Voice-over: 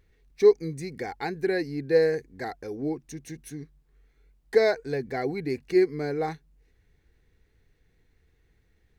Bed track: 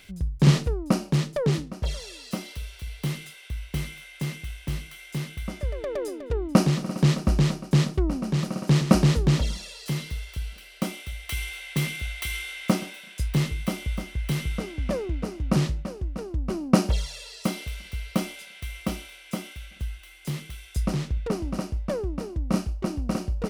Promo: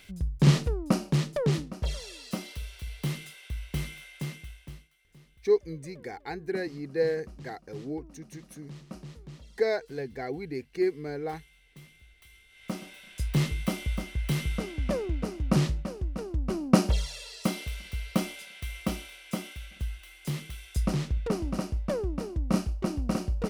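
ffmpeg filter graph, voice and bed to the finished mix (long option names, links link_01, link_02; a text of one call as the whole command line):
ffmpeg -i stem1.wav -i stem2.wav -filter_complex "[0:a]adelay=5050,volume=-5.5dB[link_01];[1:a]volume=21dB,afade=type=out:start_time=4.01:duration=0.88:silence=0.0749894,afade=type=in:start_time=12.49:duration=0.94:silence=0.0668344[link_02];[link_01][link_02]amix=inputs=2:normalize=0" out.wav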